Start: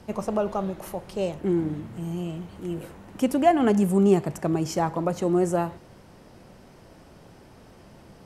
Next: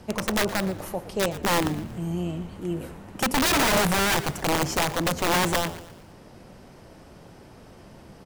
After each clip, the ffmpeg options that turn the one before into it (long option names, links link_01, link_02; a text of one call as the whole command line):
ffmpeg -i in.wav -filter_complex "[0:a]aeval=exprs='(mod(8.91*val(0)+1,2)-1)/8.91':channel_layout=same,asplit=5[link_01][link_02][link_03][link_04][link_05];[link_02]adelay=117,afreqshift=-90,volume=-15dB[link_06];[link_03]adelay=234,afreqshift=-180,volume=-21.9dB[link_07];[link_04]adelay=351,afreqshift=-270,volume=-28.9dB[link_08];[link_05]adelay=468,afreqshift=-360,volume=-35.8dB[link_09];[link_01][link_06][link_07][link_08][link_09]amix=inputs=5:normalize=0,volume=2dB" out.wav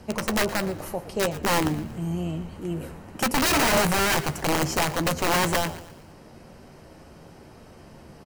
ffmpeg -i in.wav -filter_complex "[0:a]bandreject=frequency=3500:width=13,asplit=2[link_01][link_02];[link_02]adelay=13,volume=-11dB[link_03];[link_01][link_03]amix=inputs=2:normalize=0" out.wav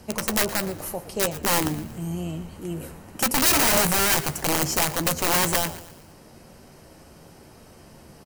ffmpeg -i in.wav -af "highshelf=frequency=6000:gain=11.5,volume=-1.5dB" out.wav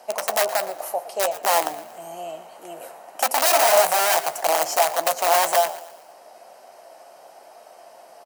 ffmpeg -i in.wav -af "highpass=frequency=680:width_type=q:width=5.3,volume=-1dB" out.wav